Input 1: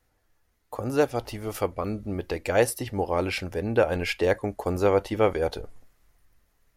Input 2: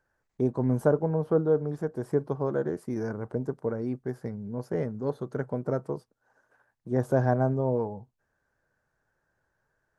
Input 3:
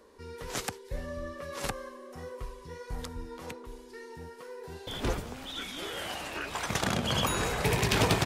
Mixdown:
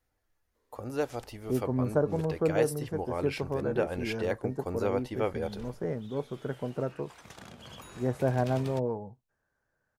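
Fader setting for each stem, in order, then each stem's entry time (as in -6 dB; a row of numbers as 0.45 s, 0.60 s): -8.5 dB, -3.5 dB, -19.0 dB; 0.00 s, 1.10 s, 0.55 s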